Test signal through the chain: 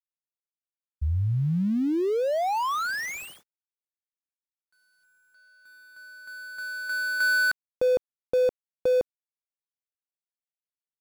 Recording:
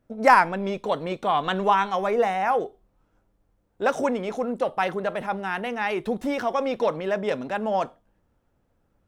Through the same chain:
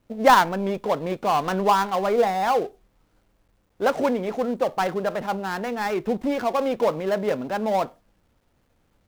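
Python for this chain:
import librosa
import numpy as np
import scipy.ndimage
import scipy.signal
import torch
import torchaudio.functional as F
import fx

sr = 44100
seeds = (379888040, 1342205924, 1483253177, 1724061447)

y = fx.dead_time(x, sr, dead_ms=0.14)
y = fx.high_shelf(y, sr, hz=3000.0, db=-10.0)
y = fx.quant_dither(y, sr, seeds[0], bits=12, dither='none')
y = y * 10.0 ** (2.5 / 20.0)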